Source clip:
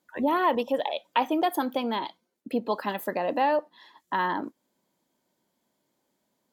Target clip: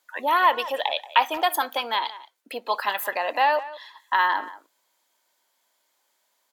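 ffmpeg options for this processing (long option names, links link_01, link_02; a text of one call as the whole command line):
ffmpeg -i in.wav -filter_complex "[0:a]highpass=990,asplit=2[link_01][link_02];[link_02]adelay=180,highpass=300,lowpass=3400,asoftclip=type=hard:threshold=-21dB,volume=-16dB[link_03];[link_01][link_03]amix=inputs=2:normalize=0,volume=9dB" out.wav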